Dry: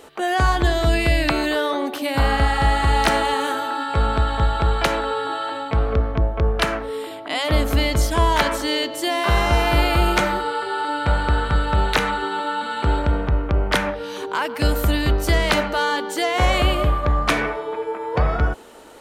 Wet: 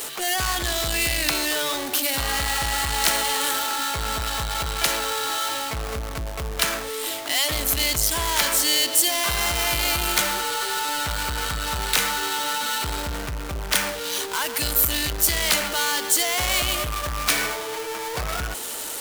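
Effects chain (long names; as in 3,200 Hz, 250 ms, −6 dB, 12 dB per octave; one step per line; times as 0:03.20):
power curve on the samples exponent 0.5
first-order pre-emphasis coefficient 0.9
level +2.5 dB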